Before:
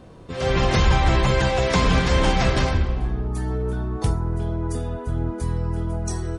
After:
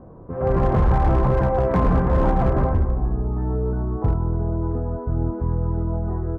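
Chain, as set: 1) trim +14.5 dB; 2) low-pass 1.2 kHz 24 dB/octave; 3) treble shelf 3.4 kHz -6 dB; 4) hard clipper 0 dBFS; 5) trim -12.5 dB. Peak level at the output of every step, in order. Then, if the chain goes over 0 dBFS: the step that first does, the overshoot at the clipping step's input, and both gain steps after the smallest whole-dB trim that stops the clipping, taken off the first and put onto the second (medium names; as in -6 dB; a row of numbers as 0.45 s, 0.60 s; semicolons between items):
+7.0 dBFS, +6.5 dBFS, +6.5 dBFS, 0.0 dBFS, -12.5 dBFS; step 1, 6.5 dB; step 1 +7.5 dB, step 5 -5.5 dB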